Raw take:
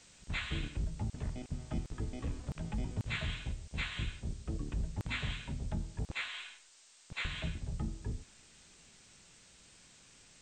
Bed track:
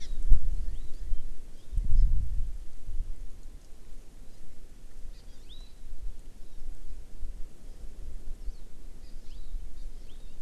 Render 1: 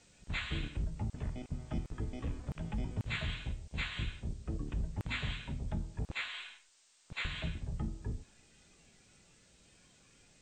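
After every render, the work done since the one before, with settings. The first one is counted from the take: noise print and reduce 6 dB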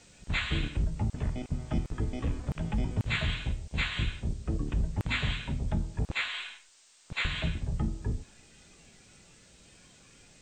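gain +7 dB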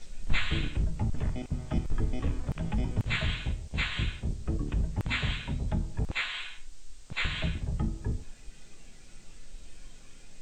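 add bed track -9.5 dB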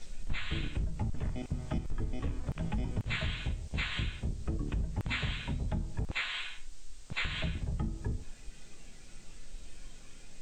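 compressor 2.5:1, threshold -31 dBFS, peak gain reduction 10 dB

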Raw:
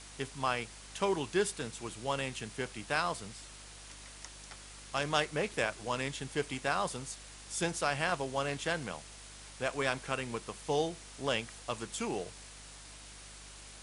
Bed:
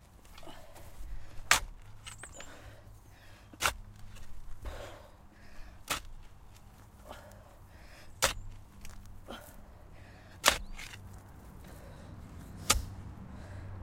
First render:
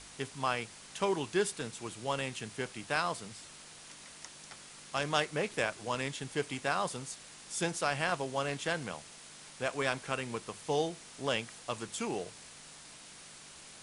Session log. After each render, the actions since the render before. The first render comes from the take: de-hum 50 Hz, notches 2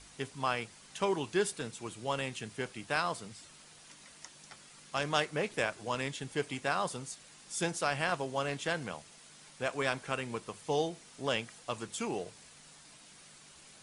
denoiser 6 dB, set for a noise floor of -52 dBFS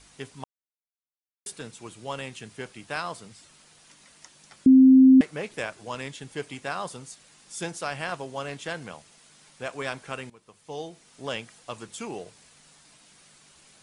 0.44–1.46 mute; 4.66–5.21 bleep 262 Hz -10 dBFS; 10.3–11.25 fade in, from -19.5 dB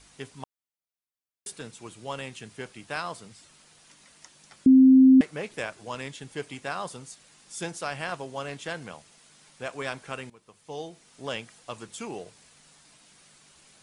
gain -1 dB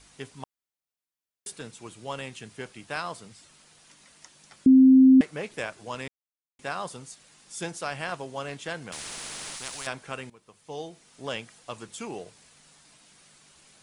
6.08–6.59 mute; 8.92–9.87 spectral compressor 10:1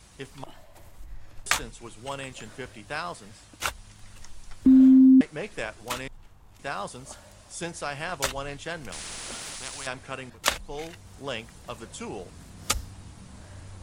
add bed +0.5 dB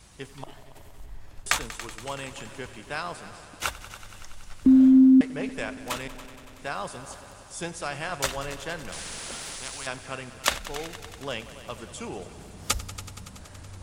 multi-head echo 94 ms, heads all three, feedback 66%, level -18.5 dB

